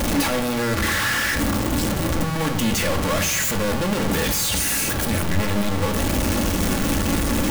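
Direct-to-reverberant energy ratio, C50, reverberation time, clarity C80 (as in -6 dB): 3.5 dB, 11.0 dB, 0.80 s, 13.5 dB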